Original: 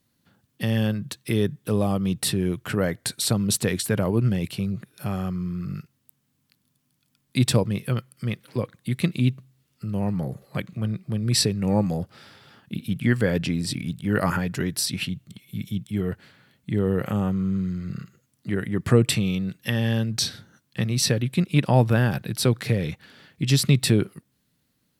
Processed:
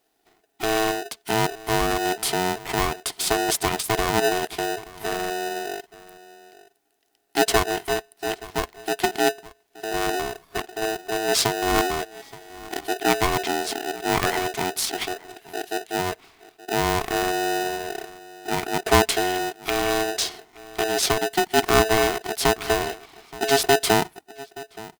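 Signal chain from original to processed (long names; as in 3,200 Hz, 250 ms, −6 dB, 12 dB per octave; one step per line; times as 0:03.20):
0:12.00–0:12.81: samples sorted by size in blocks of 32 samples
slap from a distant wall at 150 metres, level −19 dB
ring modulator with a square carrier 550 Hz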